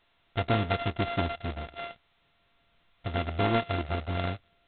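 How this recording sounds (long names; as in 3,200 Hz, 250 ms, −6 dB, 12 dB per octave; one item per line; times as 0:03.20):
a buzz of ramps at a fixed pitch in blocks of 64 samples
G.726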